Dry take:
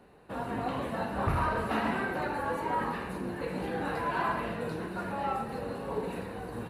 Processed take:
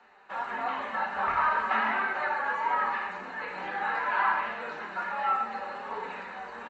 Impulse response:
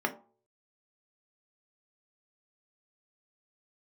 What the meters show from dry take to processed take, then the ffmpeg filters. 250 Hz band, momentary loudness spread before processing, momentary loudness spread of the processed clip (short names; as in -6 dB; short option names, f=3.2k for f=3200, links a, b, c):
-11.5 dB, 7 LU, 11 LU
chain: -filter_complex "[0:a]acrossover=split=3500[a][b];[b]acompressor=threshold=-58dB:ratio=4:attack=1:release=60[c];[a][c]amix=inputs=2:normalize=0,equalizer=f=430:w=1.8:g=-10,bandreject=f=50:t=h:w=6,bandreject=f=100:t=h:w=6,bandreject=f=150:t=h:w=6,acrossover=split=150[d][e];[d]acontrast=68[f];[f][e]amix=inputs=2:normalize=0,flanger=delay=4.3:depth=1.1:regen=-41:speed=1.5:shape=triangular,aresample=16000,aresample=44100,crystalizer=i=8.5:c=0,acrossover=split=400 2300:gain=0.112 1 0.2[g][h][i];[g][h][i]amix=inputs=3:normalize=0,asplit=2[j][k];[1:a]atrim=start_sample=2205[l];[k][l]afir=irnorm=-1:irlink=0,volume=-6.5dB[m];[j][m]amix=inputs=2:normalize=0"